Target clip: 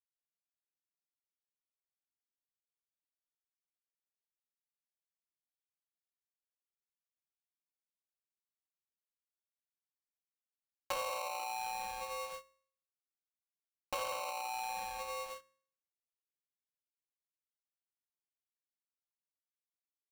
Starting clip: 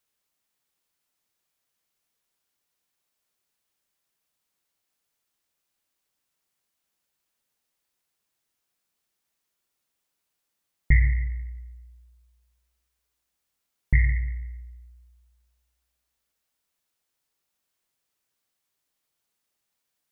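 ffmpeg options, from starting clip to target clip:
ffmpeg -i in.wav -filter_complex "[0:a]acrusher=bits=9:mix=0:aa=0.000001,aecho=1:1:14|31:0.316|0.447,aeval=exprs='(tanh(25.1*val(0)+0.8)-tanh(0.8))/25.1':channel_layout=same,asplit=3[link_01][link_02][link_03];[link_01]bandpass=frequency=300:width_type=q:width=8,volume=0dB[link_04];[link_02]bandpass=frequency=870:width_type=q:width=8,volume=-6dB[link_05];[link_03]bandpass=frequency=2240:width_type=q:width=8,volume=-9dB[link_06];[link_04][link_05][link_06]amix=inputs=3:normalize=0,acompressor=mode=upward:threshold=-50dB:ratio=2.5,bandreject=frequency=96.5:width_type=h:width=4,bandreject=frequency=193:width_type=h:width=4,bandreject=frequency=289.5:width_type=h:width=4,bandreject=frequency=386:width_type=h:width=4,bandreject=frequency=482.5:width_type=h:width=4,bandreject=frequency=579:width_type=h:width=4,bandreject=frequency=675.5:width_type=h:width=4,bandreject=frequency=772:width_type=h:width=4,bandreject=frequency=868.5:width_type=h:width=4,bandreject=frequency=965:width_type=h:width=4,bandreject=frequency=1061.5:width_type=h:width=4,bandreject=frequency=1158:width_type=h:width=4,bandreject=frequency=1254.5:width_type=h:width=4,bandreject=frequency=1351:width_type=h:width=4,bandreject=frequency=1447.5:width_type=h:width=4,bandreject=frequency=1544:width_type=h:width=4,bandreject=frequency=1640.5:width_type=h:width=4,bandreject=frequency=1737:width_type=h:width=4,bandreject=frequency=1833.5:width_type=h:width=4,bandreject=frequency=1930:width_type=h:width=4,acompressor=threshold=-59dB:ratio=4,bass=frequency=250:gain=6,treble=frequency=4000:gain=13,aecho=1:1:3.8:0.89,aeval=exprs='val(0)*sgn(sin(2*PI*820*n/s))':channel_layout=same,volume=15dB" out.wav

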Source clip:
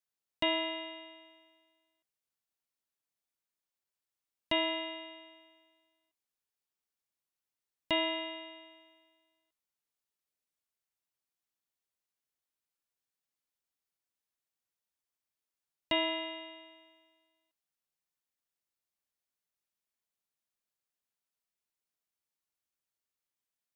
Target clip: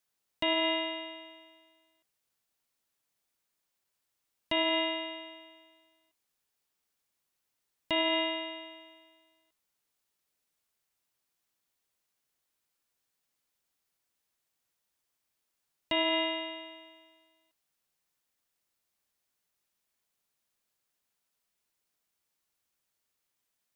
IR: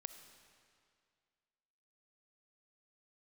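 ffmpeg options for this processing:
-af "alimiter=level_in=4dB:limit=-24dB:level=0:latency=1:release=40,volume=-4dB,volume=8.5dB"

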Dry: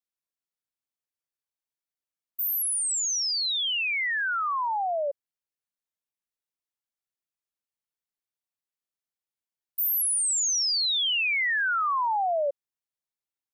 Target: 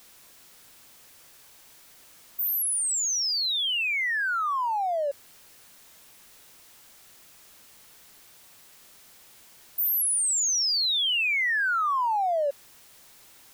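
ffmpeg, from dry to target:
ffmpeg -i in.wav -af "aeval=exprs='val(0)+0.5*0.00631*sgn(val(0))':channel_layout=same" out.wav

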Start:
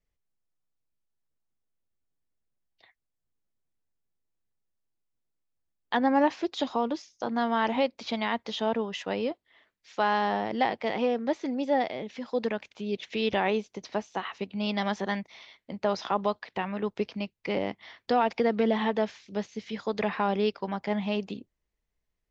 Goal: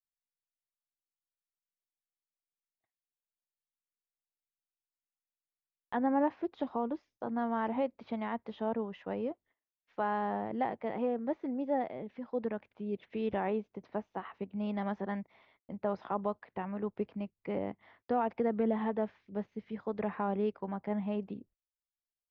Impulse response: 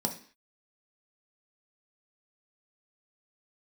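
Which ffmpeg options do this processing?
-af "agate=range=-27dB:threshold=-55dB:ratio=16:detection=peak,lowpass=1500,lowshelf=frequency=240:gain=5,volume=-7dB"

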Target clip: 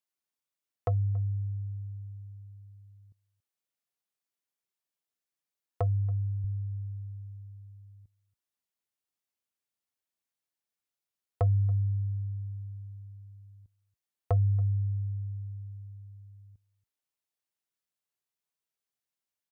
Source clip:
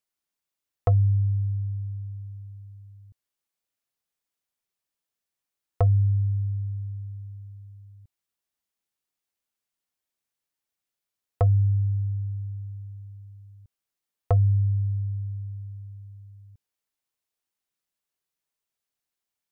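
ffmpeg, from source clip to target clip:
ffmpeg -i in.wav -filter_complex "[0:a]asetnsamples=nb_out_samples=441:pad=0,asendcmd='6.44 highpass f 44',highpass=100,asplit=2[link_01][link_02];[link_02]adelay=279.9,volume=-22dB,highshelf=frequency=4000:gain=-6.3[link_03];[link_01][link_03]amix=inputs=2:normalize=0,volume=-5dB" out.wav

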